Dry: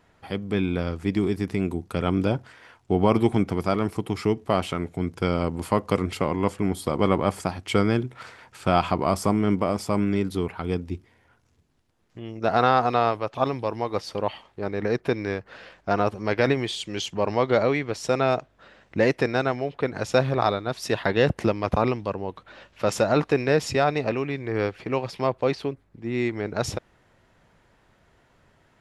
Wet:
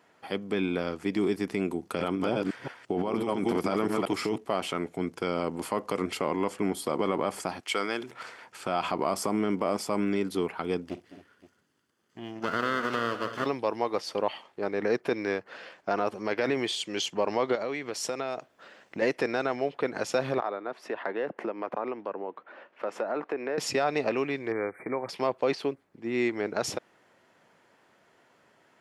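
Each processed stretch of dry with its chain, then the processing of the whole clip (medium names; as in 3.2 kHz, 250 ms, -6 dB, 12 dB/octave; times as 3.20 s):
1.82–4.38 s: chunks repeated in reverse 172 ms, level -5 dB + compressor with a negative ratio -24 dBFS
7.60–8.11 s: high-pass 1 kHz 6 dB/octave + decay stretcher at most 83 dB/s
10.86–13.46 s: comb filter that takes the minimum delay 0.64 ms + compression 5:1, threshold -22 dBFS + multi-tap echo 51/210/217/260/270/521 ms -15.5/-14.5/-18/-19/-16.5/-19.5 dB
17.55–19.02 s: treble shelf 5.8 kHz +6.5 dB + compression 4:1, threshold -28 dBFS
20.40–23.58 s: three-band isolator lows -17 dB, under 220 Hz, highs -20 dB, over 2.3 kHz + compression 2.5:1, threshold -30 dBFS
24.52–25.09 s: compression 2:1, threshold -27 dBFS + brick-wall FIR band-stop 2.4–7.9 kHz
whole clip: peak limiter -14 dBFS; high-pass 250 Hz 12 dB/octave; band-stop 3.8 kHz, Q 21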